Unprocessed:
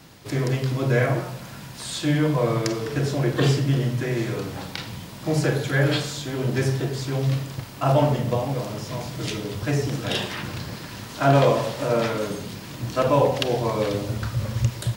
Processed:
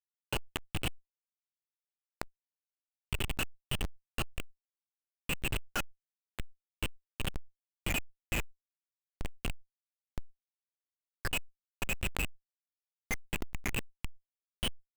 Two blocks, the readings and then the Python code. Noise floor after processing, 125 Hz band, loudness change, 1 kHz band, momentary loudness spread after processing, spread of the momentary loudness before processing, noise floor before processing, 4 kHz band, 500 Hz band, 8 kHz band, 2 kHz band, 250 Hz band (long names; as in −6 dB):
below −85 dBFS, −21.5 dB, −14.0 dB, −19.0 dB, 15 LU, 13 LU, −39 dBFS, −9.5 dB, −25.0 dB, −8.0 dB, −9.0 dB, −20.5 dB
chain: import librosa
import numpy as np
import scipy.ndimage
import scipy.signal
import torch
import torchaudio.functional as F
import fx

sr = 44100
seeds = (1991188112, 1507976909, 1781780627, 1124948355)

p1 = fx.spec_dropout(x, sr, seeds[0], share_pct=79)
p2 = fx.rider(p1, sr, range_db=3, speed_s=2.0)
p3 = fx.highpass(p2, sr, hz=410.0, slope=6)
p4 = fx.notch(p3, sr, hz=860.0, q=12.0)
p5 = p4 + fx.echo_heads(p4, sr, ms=97, heads='first and third', feedback_pct=41, wet_db=-23, dry=0)
p6 = fx.freq_invert(p5, sr, carrier_hz=3100)
p7 = fx.tilt_eq(p6, sr, slope=2.5)
p8 = fx.schmitt(p7, sr, flips_db=-21.0)
y = fx.env_flatten(p8, sr, amount_pct=70)